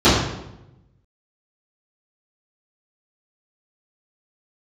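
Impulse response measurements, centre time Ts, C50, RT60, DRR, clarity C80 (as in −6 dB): 65 ms, 1.5 dB, 0.90 s, −14.5 dB, 4.5 dB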